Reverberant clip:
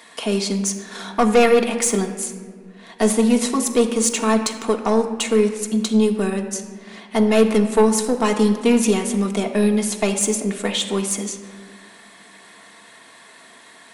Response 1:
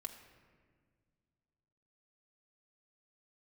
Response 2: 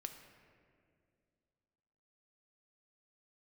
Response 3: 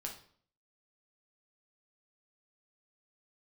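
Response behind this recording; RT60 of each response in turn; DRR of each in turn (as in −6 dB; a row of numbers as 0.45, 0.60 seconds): 1; 1.7, 2.3, 0.55 seconds; 2.0, 5.5, 0.5 decibels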